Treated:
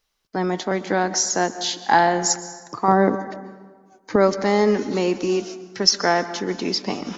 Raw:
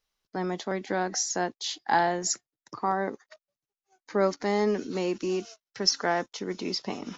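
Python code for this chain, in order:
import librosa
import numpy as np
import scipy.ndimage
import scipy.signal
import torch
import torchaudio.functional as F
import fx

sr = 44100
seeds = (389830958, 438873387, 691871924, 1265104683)

y = fx.low_shelf(x, sr, hz=470.0, db=10.5, at=(2.88, 4.16))
y = fx.rev_plate(y, sr, seeds[0], rt60_s=1.5, hf_ratio=0.55, predelay_ms=115, drr_db=13.0)
y = F.gain(torch.from_numpy(y), 7.5).numpy()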